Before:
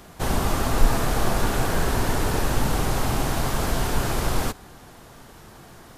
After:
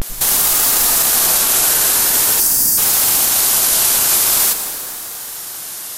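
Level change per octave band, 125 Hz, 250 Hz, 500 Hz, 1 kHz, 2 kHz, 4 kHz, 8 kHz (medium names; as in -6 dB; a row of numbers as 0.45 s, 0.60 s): -11.0 dB, -5.5 dB, -1.5 dB, +2.0 dB, +6.5 dB, +14.5 dB, +22.0 dB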